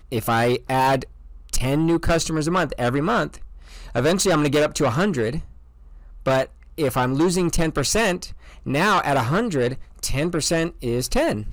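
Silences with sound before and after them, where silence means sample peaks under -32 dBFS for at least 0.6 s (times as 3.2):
5.44–6.26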